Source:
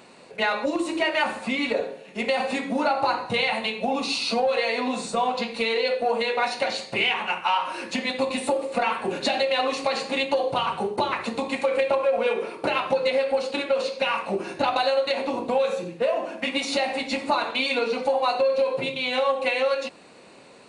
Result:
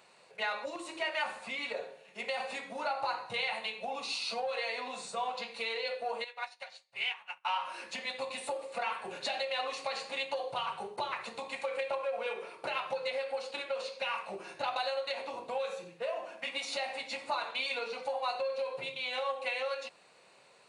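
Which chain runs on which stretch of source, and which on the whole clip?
0:06.24–0:07.45: parametric band 290 Hz −13 dB 1.6 octaves + expander for the loud parts 2.5 to 1, over −40 dBFS
whole clip: high-pass filter 130 Hz 12 dB per octave; parametric band 260 Hz −15 dB 1.2 octaves; level −9 dB

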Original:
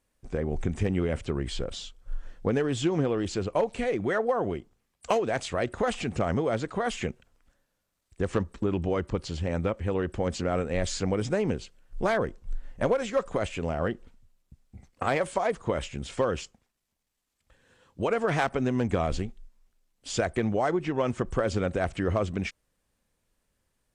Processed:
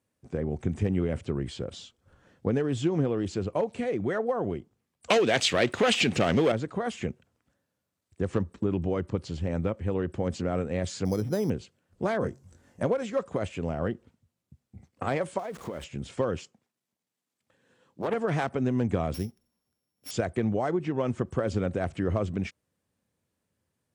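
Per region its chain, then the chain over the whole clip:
0:05.10–0:06.52: leveller curve on the samples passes 2 + meter weighting curve D
0:11.05–0:11.50: high-shelf EQ 3,400 Hz −8.5 dB + bad sample-rate conversion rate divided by 8×, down filtered, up hold
0:12.20–0:12.83: high shelf with overshoot 4,600 Hz +7 dB, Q 1.5 + double-tracking delay 22 ms −3 dB + hum removal 67.73 Hz, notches 3
0:15.39–0:15.84: converter with a step at zero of −36.5 dBFS + parametric band 110 Hz −14 dB 0.51 octaves + downward compressor 4 to 1, threshold −31 dBFS
0:16.37–0:18.14: high-pass filter 160 Hz + highs frequency-modulated by the lows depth 0.59 ms
0:19.14–0:20.11: samples sorted by size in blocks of 8 samples + high-shelf EQ 7,000 Hz +9 dB
whole clip: high-pass filter 83 Hz 24 dB per octave; low-shelf EQ 490 Hz +7.5 dB; level −5.5 dB

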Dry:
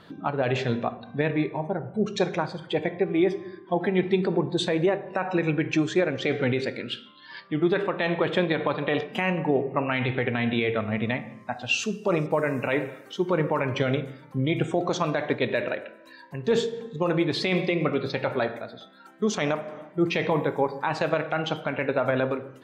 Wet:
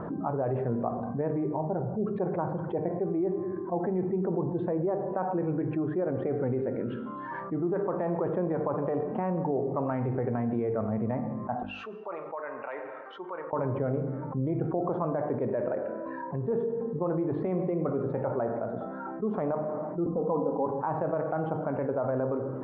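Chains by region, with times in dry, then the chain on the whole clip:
0:11.63–0:13.53: high-pass filter 800 Hz 6 dB per octave + first difference
0:20.06–0:20.66: Butterworth low-pass 1,300 Hz 96 dB per octave + comb filter 4 ms, depth 86%
whole clip: low-pass filter 1,100 Hz 24 dB per octave; mains-hum notches 50/100/150/200/250/300 Hz; envelope flattener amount 70%; level −8.5 dB

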